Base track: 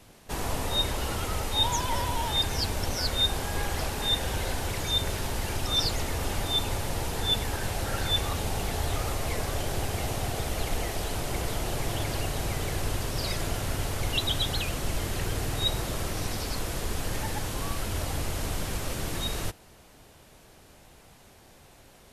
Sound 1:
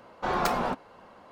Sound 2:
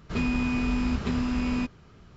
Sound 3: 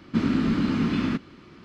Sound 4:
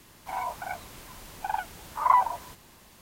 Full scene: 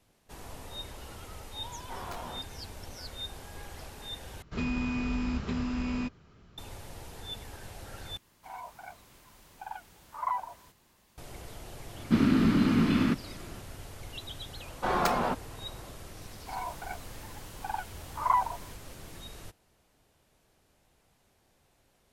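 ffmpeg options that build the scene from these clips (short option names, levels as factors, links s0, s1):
-filter_complex "[1:a]asplit=2[s0][s1];[4:a]asplit=2[s2][s3];[0:a]volume=0.188[s4];[s0]flanger=delay=20:depth=5.1:speed=2.3[s5];[s4]asplit=3[s6][s7][s8];[s6]atrim=end=4.424[s9];[2:a]atrim=end=2.16,asetpts=PTS-STARTPTS,volume=0.562[s10];[s7]atrim=start=6.576:end=8.174[s11];[s2]atrim=end=3.01,asetpts=PTS-STARTPTS,volume=0.282[s12];[s8]atrim=start=11.176[s13];[s5]atrim=end=1.31,asetpts=PTS-STARTPTS,volume=0.237,afade=t=in:d=0.004:c=hsin,afade=t=out:st=1.306:d=0.004:c=hsin,adelay=1660[s14];[3:a]atrim=end=1.64,asetpts=PTS-STARTPTS,volume=0.944,afade=t=in:d=0.004:c=hsin,afade=t=out:st=1.636:d=0.004:c=hsin,adelay=11970[s15];[s1]atrim=end=1.31,asetpts=PTS-STARTPTS,volume=0.944,afade=t=in:d=0.004:c=hsin,afade=t=out:st=1.306:d=0.004:c=hsin,adelay=643860S[s16];[s3]atrim=end=3.01,asetpts=PTS-STARTPTS,volume=0.562,afade=t=in:d=0.004:c=hsin,afade=t=out:st=3.006:d=0.004:c=hsin,adelay=714420S[s17];[s9][s10]acrossfade=d=0.004:c1=hsin:c2=hsin[s18];[s18][s11]acrossfade=d=0.004:c1=hsin:c2=hsin[s19];[s19][s12]acrossfade=d=0.004:c1=hsin:c2=hsin[s20];[s20][s13]acrossfade=d=0.004:c1=hsin:c2=hsin[s21];[s21][s14][s15][s16][s17]amix=inputs=5:normalize=0"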